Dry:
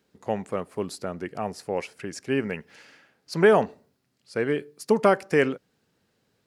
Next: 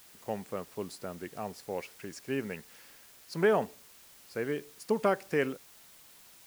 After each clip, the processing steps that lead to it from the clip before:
bit-depth reduction 8 bits, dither triangular
level −8 dB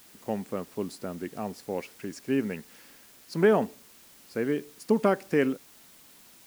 parametric band 250 Hz +8 dB 1.1 octaves
level +1.5 dB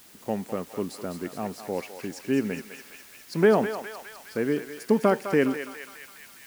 feedback echo with a high-pass in the loop 206 ms, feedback 74%, high-pass 990 Hz, level −6 dB
level +2 dB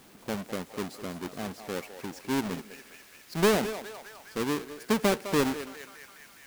each half-wave held at its own peak
level −8 dB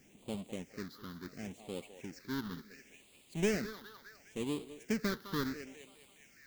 all-pass phaser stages 6, 0.71 Hz, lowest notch 640–1,600 Hz
level −6.5 dB

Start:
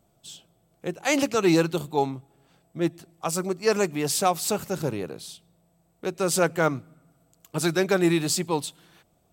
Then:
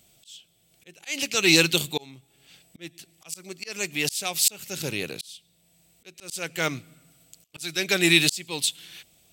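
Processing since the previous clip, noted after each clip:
high shelf with overshoot 1,700 Hz +14 dB, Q 1.5
volume swells 626 ms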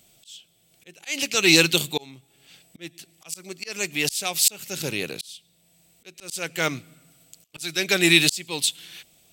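parametric band 66 Hz −5.5 dB 1.3 octaves
level +2 dB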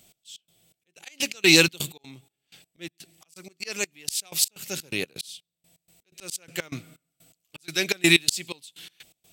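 gate pattern "x.x.xx..x.x.x" 125 BPM −24 dB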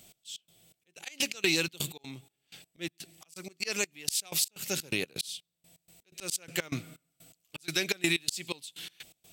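downward compressor 4 to 1, threshold −28 dBFS, peak gain reduction 14.5 dB
level +1.5 dB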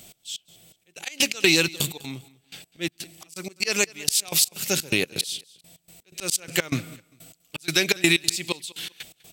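repeating echo 199 ms, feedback 28%, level −22 dB
level +8.5 dB

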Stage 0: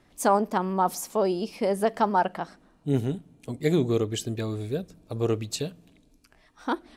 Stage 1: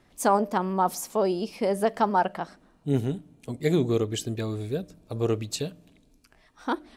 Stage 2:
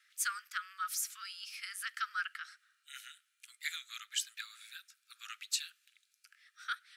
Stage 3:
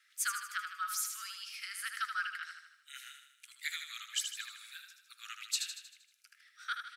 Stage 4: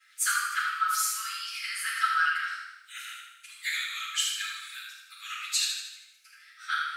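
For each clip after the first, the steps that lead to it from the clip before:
hum removal 300.1 Hz, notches 2
Butterworth high-pass 1,300 Hz 96 dB per octave; level −1 dB
repeating echo 78 ms, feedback 53%, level −6.5 dB
convolution reverb RT60 0.80 s, pre-delay 4 ms, DRR −12.5 dB; level −6.5 dB

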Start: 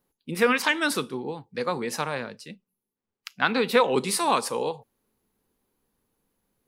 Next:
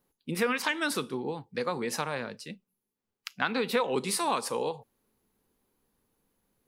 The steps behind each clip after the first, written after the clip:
downward compressor 2 to 1, threshold −29 dBFS, peak gain reduction 8.5 dB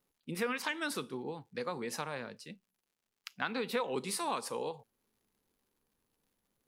surface crackle 170 per second −59 dBFS
level −6.5 dB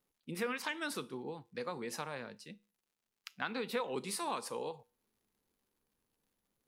tuned comb filter 69 Hz, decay 0.39 s, harmonics odd, mix 30%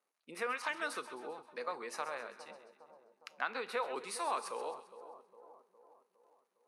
loudspeaker in its box 500–9,900 Hz, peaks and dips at 640 Hz +4 dB, 1,200 Hz +4 dB, 3,300 Hz −7 dB, 5,100 Hz −5 dB, 7,400 Hz −7 dB
echo with a time of its own for lows and highs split 1,000 Hz, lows 409 ms, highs 132 ms, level −12.5 dB
level +1 dB

